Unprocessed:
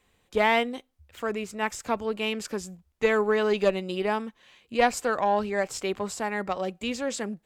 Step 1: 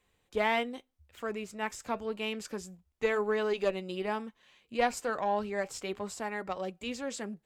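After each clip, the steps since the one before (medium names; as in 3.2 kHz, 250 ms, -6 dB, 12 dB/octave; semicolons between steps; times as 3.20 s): flange 0.3 Hz, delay 1.8 ms, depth 4.3 ms, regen -80%; trim -2 dB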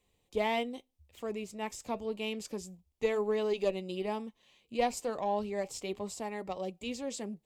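peaking EQ 1.5 kHz -15 dB 0.67 oct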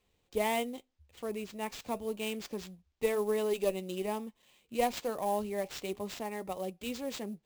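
sample-rate reducer 11 kHz, jitter 20%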